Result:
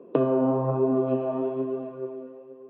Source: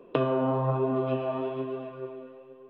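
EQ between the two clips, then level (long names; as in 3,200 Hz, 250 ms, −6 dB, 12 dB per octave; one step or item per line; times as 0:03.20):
high-pass filter 160 Hz 12 dB per octave
resonant band-pass 230 Hz, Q 0.53
+6.0 dB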